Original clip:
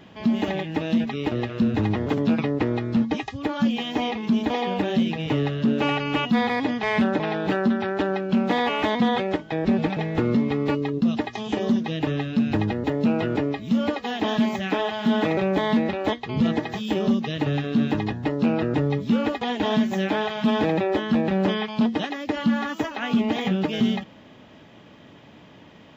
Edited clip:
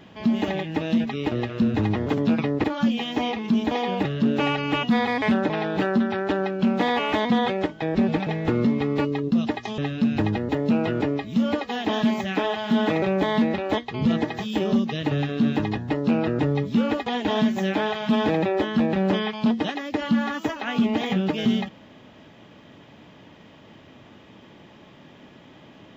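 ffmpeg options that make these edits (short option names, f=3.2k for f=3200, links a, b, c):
-filter_complex "[0:a]asplit=5[a][b][c][d][e];[a]atrim=end=2.642[f];[b]atrim=start=3.428:end=4.842[g];[c]atrim=start=5.468:end=6.642[h];[d]atrim=start=6.918:end=11.482[i];[e]atrim=start=12.128[j];[f][g]acrossfade=d=0.004:c1=hsin:c2=hsin[k];[k][h]acrossfade=d=0.004:c1=hsin:c2=hsin[l];[l][i]acrossfade=d=0.004:c1=hsin:c2=hsin[m];[m][j]acrossfade=d=0.004:c1=hsin:c2=hsin"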